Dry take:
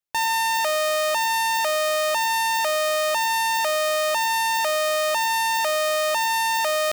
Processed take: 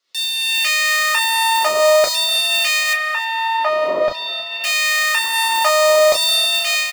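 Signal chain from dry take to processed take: wind noise 290 Hz -33 dBFS; reverb removal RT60 1.4 s; level rider gain up to 13.5 dB; peak limiter -10.5 dBFS, peak gain reduction 8.5 dB; comb of notches 790 Hz; LFO high-pass saw down 0.49 Hz 550–4700 Hz; 2.93–4.64 s: distance through air 340 m; frequency-shifting echo 314 ms, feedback 49%, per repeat +32 Hz, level -19 dB; reverberation, pre-delay 5 ms, DRR 2 dB

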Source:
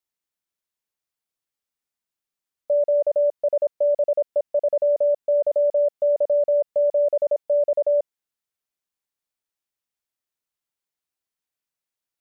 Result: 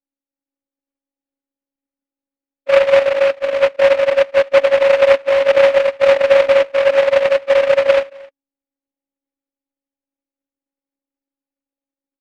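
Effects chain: phase randomisation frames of 50 ms; in parallel at -6 dB: hard clipper -17.5 dBFS, distortion -12 dB; on the sum: level rider gain up to 4 dB; speakerphone echo 260 ms, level -21 dB; robot voice 276 Hz; steep low-pass 800 Hz 36 dB/octave; peaking EQ 300 Hz +9.5 dB 1.1 oct; delay time shaken by noise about 1.5 kHz, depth 0.08 ms

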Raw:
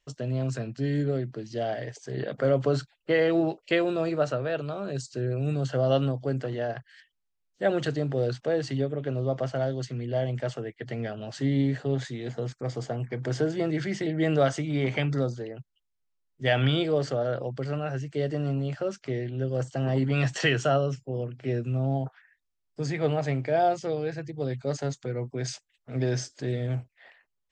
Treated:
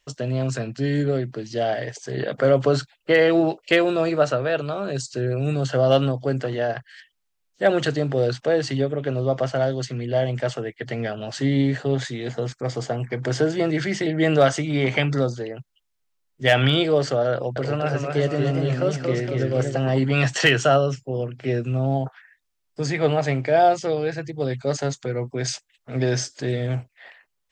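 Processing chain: bass shelf 450 Hz -5 dB; hard clipper -15.5 dBFS, distortion -34 dB; 17.33–19.77 s: modulated delay 234 ms, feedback 51%, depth 133 cents, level -4 dB; trim +8.5 dB

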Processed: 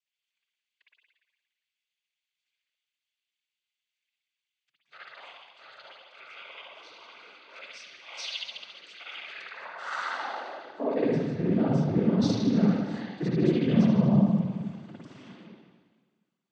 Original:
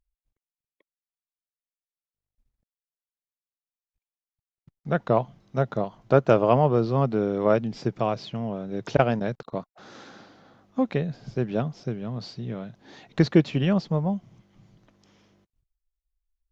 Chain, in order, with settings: reverse; compression 12:1, threshold -35 dBFS, peak gain reduction 23.5 dB; reverse; spring tank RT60 1.5 s, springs 53 ms, chirp 25 ms, DRR -8 dB; high-pass sweep 2.7 kHz -> 200 Hz, 9.30–11.46 s; noise-vocoded speech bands 16; trim +4 dB

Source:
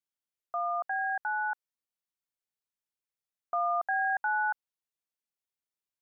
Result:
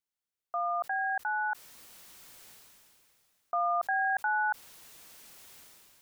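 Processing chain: decay stretcher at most 23 dB/s

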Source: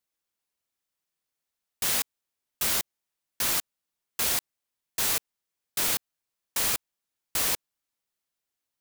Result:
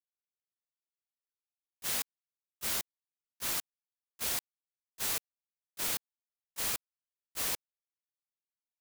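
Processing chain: gate -26 dBFS, range -21 dB; trim -6.5 dB

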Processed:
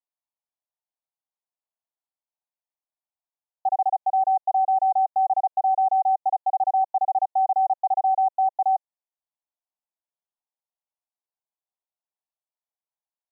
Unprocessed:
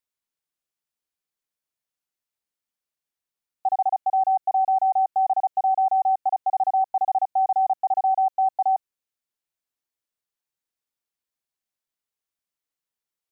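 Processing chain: Butterworth band-pass 780 Hz, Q 1.8

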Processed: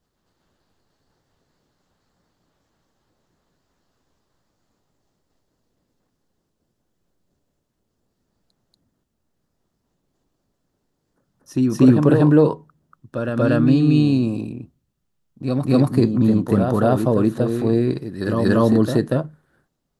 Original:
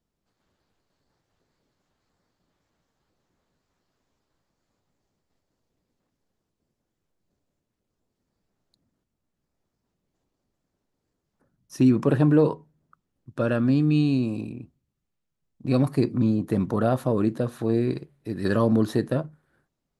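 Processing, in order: peaking EQ 2.3 kHz -4.5 dB 0.34 oct; on a send: reverse echo 237 ms -5.5 dB; on the sum: trim +5 dB

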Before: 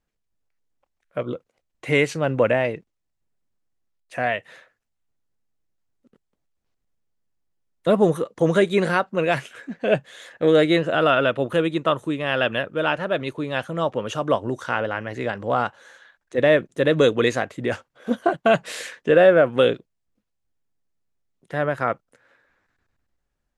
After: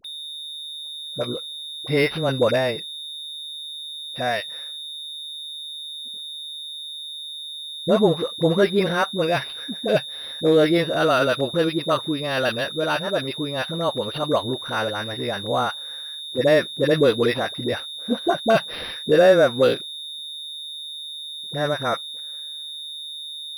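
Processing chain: whistle 3.6 kHz -27 dBFS; phase dispersion highs, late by 46 ms, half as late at 630 Hz; decimation joined by straight lines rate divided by 6×

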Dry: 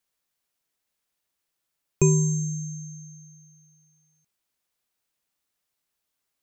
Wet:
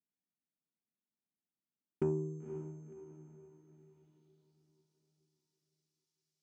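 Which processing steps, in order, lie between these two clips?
single-diode clipper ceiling -16.5 dBFS; dynamic bell 120 Hz, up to -5 dB, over -33 dBFS, Q 1.1; band-pass sweep 210 Hz -> 5.3 kHz, 1.76–4.66 s; Chebyshev shaper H 5 -19 dB, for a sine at -17.5 dBFS; comb of notches 530 Hz; on a send: echo that smears into a reverb 519 ms, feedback 44%, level -10 dB; on the sum: trim -3.5 dB

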